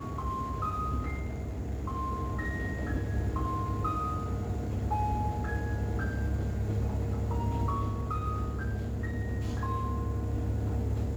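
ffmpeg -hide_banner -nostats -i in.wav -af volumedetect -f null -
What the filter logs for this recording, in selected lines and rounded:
mean_volume: -31.2 dB
max_volume: -19.1 dB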